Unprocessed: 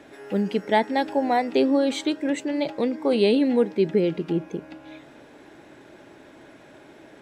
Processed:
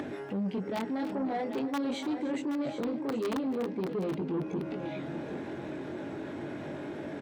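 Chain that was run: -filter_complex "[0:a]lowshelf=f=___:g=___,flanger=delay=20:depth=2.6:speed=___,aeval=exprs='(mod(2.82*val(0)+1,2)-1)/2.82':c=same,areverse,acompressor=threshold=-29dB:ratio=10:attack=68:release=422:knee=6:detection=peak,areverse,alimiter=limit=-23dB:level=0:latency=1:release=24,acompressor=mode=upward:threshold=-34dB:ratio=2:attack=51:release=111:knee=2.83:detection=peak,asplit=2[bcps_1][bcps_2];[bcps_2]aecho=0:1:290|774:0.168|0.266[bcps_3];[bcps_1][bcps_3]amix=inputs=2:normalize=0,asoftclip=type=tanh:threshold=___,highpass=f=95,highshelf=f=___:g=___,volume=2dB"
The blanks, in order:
360, 10.5, 0.44, -29dB, 5100, -9.5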